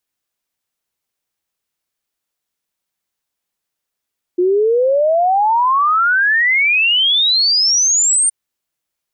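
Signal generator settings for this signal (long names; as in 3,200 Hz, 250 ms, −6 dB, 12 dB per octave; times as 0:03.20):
exponential sine sweep 350 Hz → 9,000 Hz 3.92 s −10.5 dBFS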